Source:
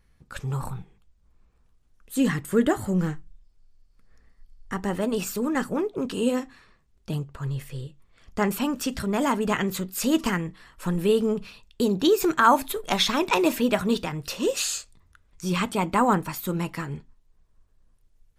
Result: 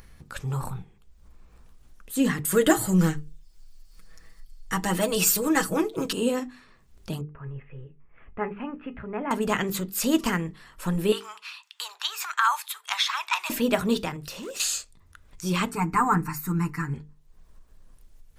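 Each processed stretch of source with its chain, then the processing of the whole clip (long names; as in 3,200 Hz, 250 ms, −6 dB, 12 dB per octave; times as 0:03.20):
0:02.45–0:06.13: high-shelf EQ 2,400 Hz +10 dB + comb filter 6.2 ms, depth 73%
0:07.21–0:09.31: Butterworth low-pass 2,600 Hz 48 dB per octave + tuned comb filter 420 Hz, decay 0.18 s
0:11.12–0:13.50: Butterworth high-pass 970 Hz + high-shelf EQ 10,000 Hz −10.5 dB + multiband upward and downward compressor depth 40%
0:14.16–0:14.60: hard clipping −23 dBFS + downward compressor 12 to 1, threshold −34 dBFS
0:15.71–0:16.94: parametric band 12,000 Hz −6.5 dB 0.9 octaves + phaser with its sweep stopped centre 1,400 Hz, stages 4 + comb filter 6.7 ms, depth 88%
whole clip: high-shelf EQ 9,500 Hz +4 dB; mains-hum notches 50/100/150/200/250/300/350/400/450 Hz; upward compression, threshold −38 dBFS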